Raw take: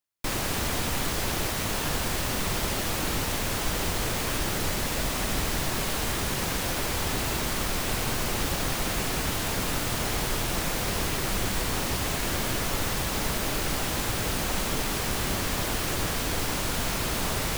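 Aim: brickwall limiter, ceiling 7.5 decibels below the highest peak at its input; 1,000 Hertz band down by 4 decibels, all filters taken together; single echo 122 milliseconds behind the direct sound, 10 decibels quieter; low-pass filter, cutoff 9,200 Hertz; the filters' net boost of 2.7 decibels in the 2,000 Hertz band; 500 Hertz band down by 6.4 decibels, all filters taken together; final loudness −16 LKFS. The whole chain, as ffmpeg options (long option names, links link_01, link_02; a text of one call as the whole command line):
ffmpeg -i in.wav -af "lowpass=9200,equalizer=frequency=500:width_type=o:gain=-7.5,equalizer=frequency=1000:width_type=o:gain=-4.5,equalizer=frequency=2000:width_type=o:gain=5,alimiter=limit=-23dB:level=0:latency=1,aecho=1:1:122:0.316,volume=15.5dB" out.wav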